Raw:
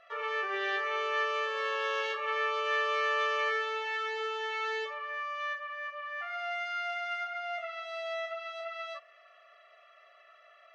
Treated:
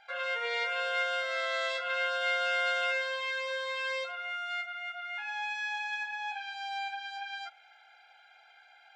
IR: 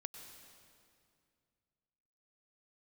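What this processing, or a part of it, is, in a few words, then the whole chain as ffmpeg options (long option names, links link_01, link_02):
nightcore: -af "asetrate=52920,aresample=44100"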